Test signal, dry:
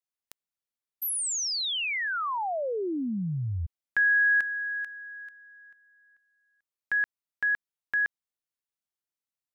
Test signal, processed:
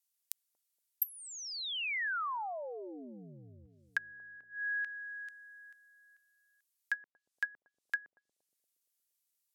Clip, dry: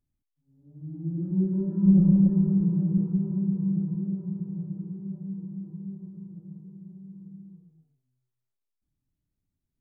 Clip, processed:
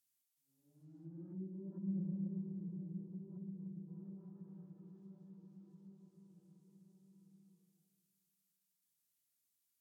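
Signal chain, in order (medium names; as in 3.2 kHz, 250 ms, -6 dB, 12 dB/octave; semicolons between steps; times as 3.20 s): low-pass that closes with the level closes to 340 Hz, closed at -23 dBFS; differentiator; on a send: bucket-brigade echo 234 ms, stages 1024, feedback 51%, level -11 dB; on the sum: trim +10.5 dB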